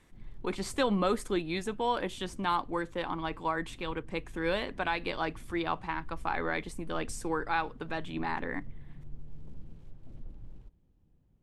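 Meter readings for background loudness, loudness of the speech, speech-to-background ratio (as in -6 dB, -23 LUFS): -53.0 LUFS, -33.5 LUFS, 19.5 dB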